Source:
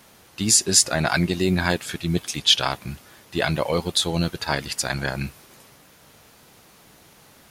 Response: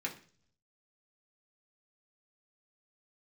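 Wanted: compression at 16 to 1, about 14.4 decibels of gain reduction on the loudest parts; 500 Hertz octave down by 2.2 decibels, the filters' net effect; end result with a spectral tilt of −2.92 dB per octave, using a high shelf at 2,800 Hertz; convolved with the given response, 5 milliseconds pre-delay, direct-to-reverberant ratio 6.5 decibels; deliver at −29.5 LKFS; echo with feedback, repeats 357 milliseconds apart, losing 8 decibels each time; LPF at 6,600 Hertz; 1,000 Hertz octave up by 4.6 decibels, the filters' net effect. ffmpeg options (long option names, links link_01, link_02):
-filter_complex "[0:a]lowpass=6600,equalizer=frequency=500:width_type=o:gain=-5.5,equalizer=frequency=1000:width_type=o:gain=7,highshelf=frequency=2800:gain=6,acompressor=threshold=-23dB:ratio=16,aecho=1:1:357|714|1071|1428|1785:0.398|0.159|0.0637|0.0255|0.0102,asplit=2[link_01][link_02];[1:a]atrim=start_sample=2205,adelay=5[link_03];[link_02][link_03]afir=irnorm=-1:irlink=0,volume=-9dB[link_04];[link_01][link_04]amix=inputs=2:normalize=0,volume=-2dB"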